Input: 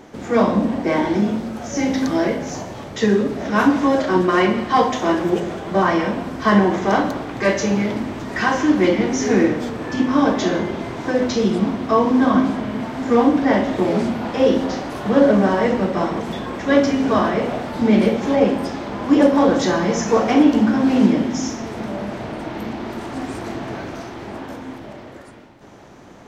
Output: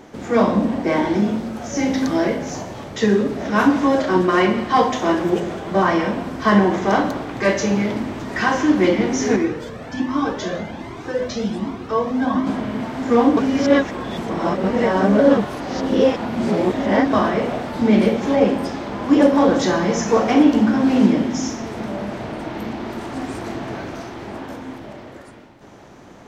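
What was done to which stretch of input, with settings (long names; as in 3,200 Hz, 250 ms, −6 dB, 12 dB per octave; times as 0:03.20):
0:09.36–0:12.47: flanger whose copies keep moving one way rising 1.3 Hz
0:13.37–0:17.13: reverse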